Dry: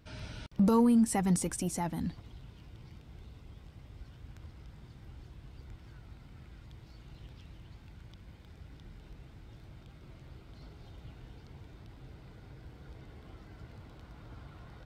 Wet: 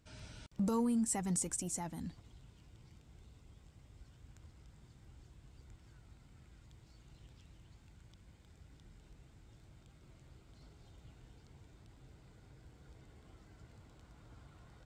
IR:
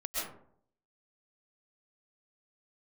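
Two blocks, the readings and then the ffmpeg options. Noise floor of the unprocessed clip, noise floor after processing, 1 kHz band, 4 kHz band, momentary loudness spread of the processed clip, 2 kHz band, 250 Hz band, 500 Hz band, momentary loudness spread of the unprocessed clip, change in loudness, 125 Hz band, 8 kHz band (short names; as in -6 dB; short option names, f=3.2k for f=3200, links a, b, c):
-55 dBFS, -63 dBFS, -8.5 dB, -6.0 dB, 17 LU, -8.0 dB, -8.5 dB, -8.5 dB, 17 LU, -7.0 dB, -8.5 dB, +0.5 dB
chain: -af "equalizer=f=7.5k:w=1.9:g=12.5,volume=-8.5dB"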